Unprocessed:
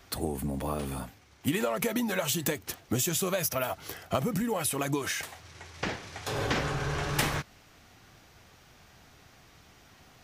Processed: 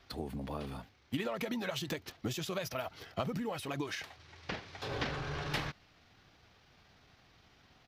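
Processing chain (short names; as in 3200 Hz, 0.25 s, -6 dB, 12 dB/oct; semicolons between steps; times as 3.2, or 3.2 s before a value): tempo 1.3×; resonant high shelf 6100 Hz -10.5 dB, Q 1.5; gain -7 dB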